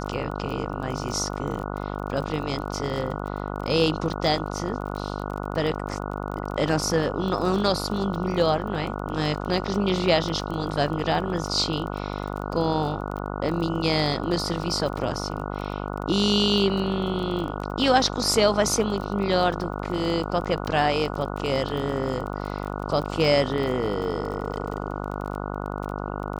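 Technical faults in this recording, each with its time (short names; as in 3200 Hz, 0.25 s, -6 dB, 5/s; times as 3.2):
buzz 50 Hz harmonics 29 -31 dBFS
crackle 26/s -31 dBFS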